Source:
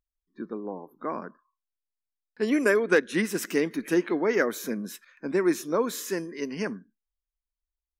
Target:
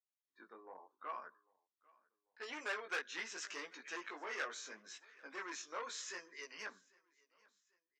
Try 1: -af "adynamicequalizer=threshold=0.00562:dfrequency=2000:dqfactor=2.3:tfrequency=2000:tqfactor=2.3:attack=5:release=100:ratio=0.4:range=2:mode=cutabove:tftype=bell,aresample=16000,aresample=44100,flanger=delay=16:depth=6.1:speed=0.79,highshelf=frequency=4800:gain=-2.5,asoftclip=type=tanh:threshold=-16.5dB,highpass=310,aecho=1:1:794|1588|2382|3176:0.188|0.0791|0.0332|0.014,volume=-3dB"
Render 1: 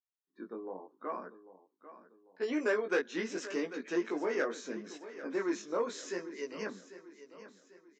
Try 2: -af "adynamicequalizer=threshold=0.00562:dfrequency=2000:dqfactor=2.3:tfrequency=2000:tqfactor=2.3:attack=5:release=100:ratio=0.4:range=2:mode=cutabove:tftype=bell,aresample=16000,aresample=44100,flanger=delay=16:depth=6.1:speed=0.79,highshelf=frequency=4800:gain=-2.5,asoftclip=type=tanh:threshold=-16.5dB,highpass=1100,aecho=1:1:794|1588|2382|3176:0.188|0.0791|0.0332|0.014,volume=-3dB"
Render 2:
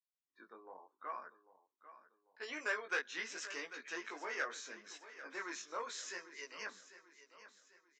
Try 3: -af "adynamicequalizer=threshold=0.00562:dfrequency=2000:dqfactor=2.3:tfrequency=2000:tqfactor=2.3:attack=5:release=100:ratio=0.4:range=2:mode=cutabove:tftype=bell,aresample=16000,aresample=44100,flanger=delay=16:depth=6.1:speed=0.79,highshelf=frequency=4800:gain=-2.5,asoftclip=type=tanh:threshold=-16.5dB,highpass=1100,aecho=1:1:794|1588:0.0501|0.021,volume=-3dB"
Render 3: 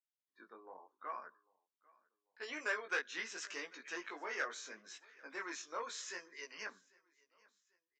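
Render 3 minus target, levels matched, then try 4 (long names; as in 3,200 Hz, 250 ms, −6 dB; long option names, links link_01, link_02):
soft clipping: distortion −9 dB
-af "adynamicequalizer=threshold=0.00562:dfrequency=2000:dqfactor=2.3:tfrequency=2000:tqfactor=2.3:attack=5:release=100:ratio=0.4:range=2:mode=cutabove:tftype=bell,aresample=16000,aresample=44100,flanger=delay=16:depth=6.1:speed=0.79,highshelf=frequency=4800:gain=-2.5,asoftclip=type=tanh:threshold=-24dB,highpass=1100,aecho=1:1:794|1588:0.0501|0.021,volume=-3dB"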